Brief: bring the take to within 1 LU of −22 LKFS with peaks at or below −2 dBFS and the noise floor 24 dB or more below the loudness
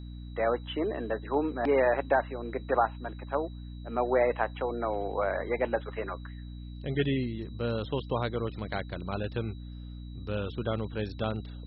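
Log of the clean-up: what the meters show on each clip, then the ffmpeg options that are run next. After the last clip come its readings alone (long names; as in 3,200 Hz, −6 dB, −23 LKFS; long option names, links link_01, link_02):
mains hum 60 Hz; hum harmonics up to 300 Hz; level of the hum −39 dBFS; interfering tone 3,900 Hz; level of the tone −59 dBFS; integrated loudness −31.0 LKFS; sample peak −11.5 dBFS; target loudness −22.0 LKFS
→ -af "bandreject=frequency=60:width_type=h:width=6,bandreject=frequency=120:width_type=h:width=6,bandreject=frequency=180:width_type=h:width=6,bandreject=frequency=240:width_type=h:width=6,bandreject=frequency=300:width_type=h:width=6"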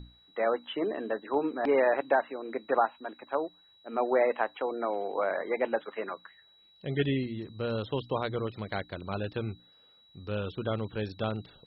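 mains hum none found; interfering tone 3,900 Hz; level of the tone −59 dBFS
→ -af "bandreject=frequency=3900:width=30"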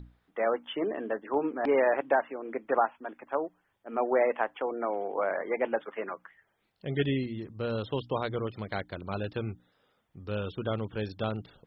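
interfering tone none found; integrated loudness −31.5 LKFS; sample peak −12.0 dBFS; target loudness −22.0 LKFS
→ -af "volume=9.5dB"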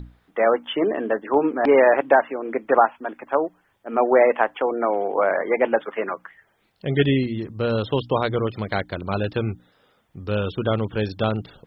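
integrated loudness −22.0 LKFS; sample peak −2.5 dBFS; background noise floor −65 dBFS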